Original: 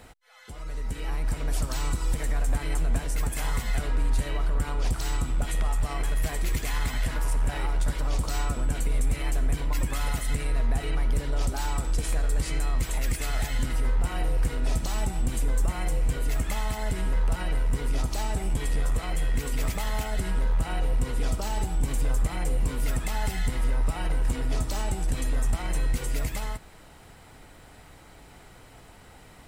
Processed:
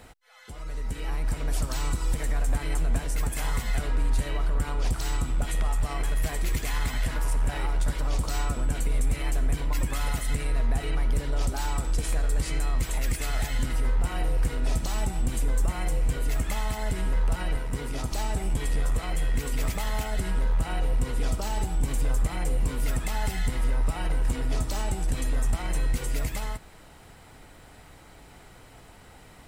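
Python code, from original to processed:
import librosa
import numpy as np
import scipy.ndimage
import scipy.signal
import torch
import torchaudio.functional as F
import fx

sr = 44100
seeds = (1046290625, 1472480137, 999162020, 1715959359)

y = fx.highpass(x, sr, hz=58.0, slope=12, at=(17.56, 18.12))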